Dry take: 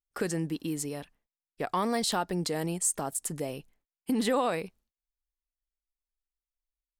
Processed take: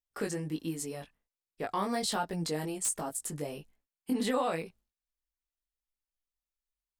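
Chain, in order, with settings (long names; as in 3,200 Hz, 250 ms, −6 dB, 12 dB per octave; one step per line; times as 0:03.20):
wrap-around overflow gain 16.5 dB
chorus effect 1.3 Hz, delay 18 ms, depth 2.3 ms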